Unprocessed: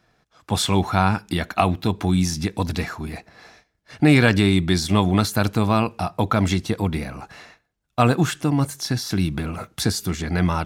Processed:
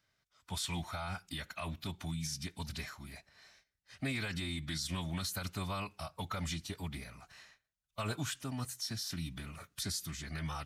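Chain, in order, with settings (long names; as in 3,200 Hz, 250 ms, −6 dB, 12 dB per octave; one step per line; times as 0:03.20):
guitar amp tone stack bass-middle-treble 5-5-5
brickwall limiter −23.5 dBFS, peak gain reduction 9 dB
phase-vocoder pitch shift with formants kept −2 semitones
level −2.5 dB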